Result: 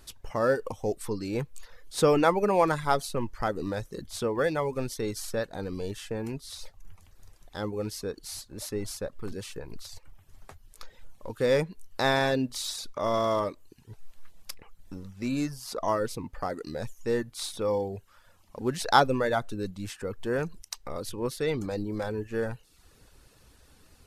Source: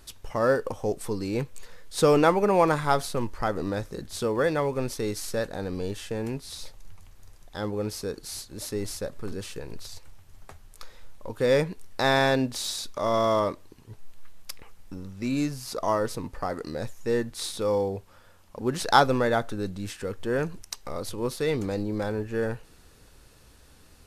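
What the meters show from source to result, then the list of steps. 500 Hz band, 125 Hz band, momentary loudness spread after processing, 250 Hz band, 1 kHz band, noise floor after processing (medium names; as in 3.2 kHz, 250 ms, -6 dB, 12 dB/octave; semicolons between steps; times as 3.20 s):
-2.5 dB, -3.0 dB, 17 LU, -2.5 dB, -2.0 dB, -59 dBFS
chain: reverb removal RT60 0.57 s; trim -1.5 dB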